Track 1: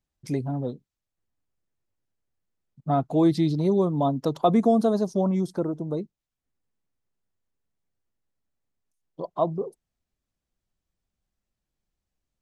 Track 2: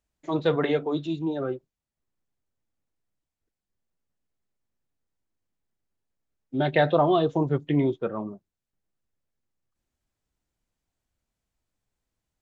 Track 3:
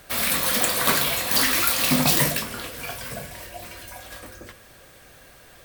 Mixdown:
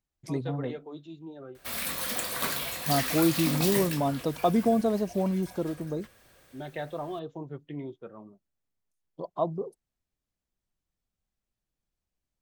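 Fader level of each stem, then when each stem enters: -4.0 dB, -15.0 dB, -10.0 dB; 0.00 s, 0.00 s, 1.55 s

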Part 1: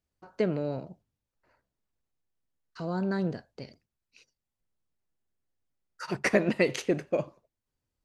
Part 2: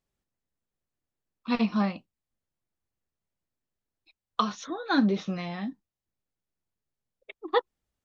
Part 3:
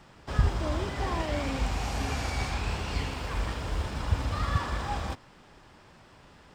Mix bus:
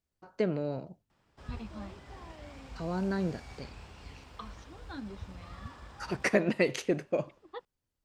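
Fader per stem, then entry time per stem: -2.0 dB, -19.0 dB, -17.5 dB; 0.00 s, 0.00 s, 1.10 s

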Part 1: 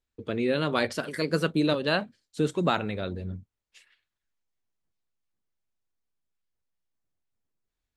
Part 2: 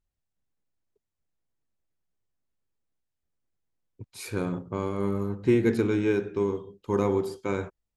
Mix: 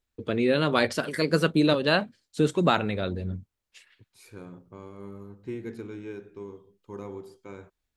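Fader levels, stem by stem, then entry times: +3.0 dB, -14.0 dB; 0.00 s, 0.00 s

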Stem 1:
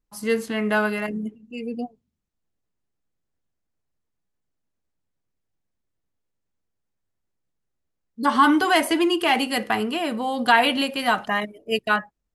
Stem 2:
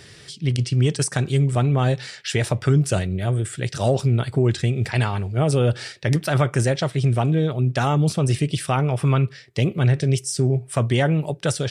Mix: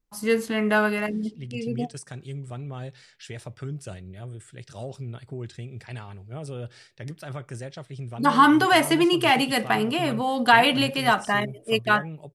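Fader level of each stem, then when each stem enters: +0.5 dB, -16.5 dB; 0.00 s, 0.95 s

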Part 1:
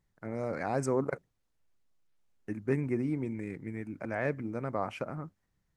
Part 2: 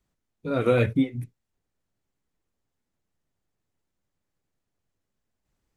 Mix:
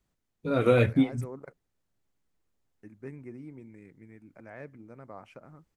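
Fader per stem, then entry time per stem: -12.5 dB, -0.5 dB; 0.35 s, 0.00 s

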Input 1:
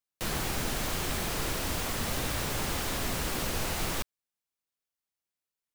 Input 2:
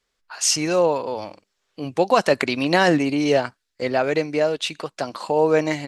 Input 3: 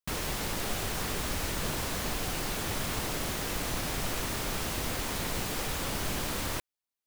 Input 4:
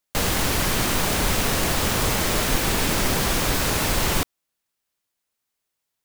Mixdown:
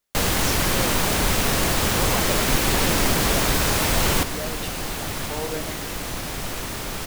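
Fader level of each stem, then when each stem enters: -3.5 dB, -14.0 dB, +3.0 dB, +1.0 dB; 1.25 s, 0.00 s, 2.40 s, 0.00 s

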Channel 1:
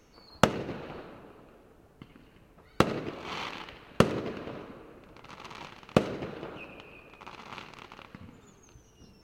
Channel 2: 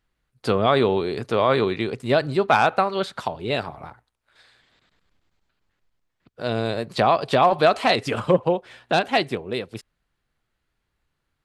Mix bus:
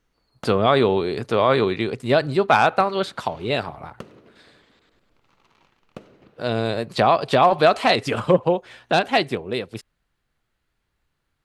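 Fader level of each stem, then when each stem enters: -16.5 dB, +1.5 dB; 0.00 s, 0.00 s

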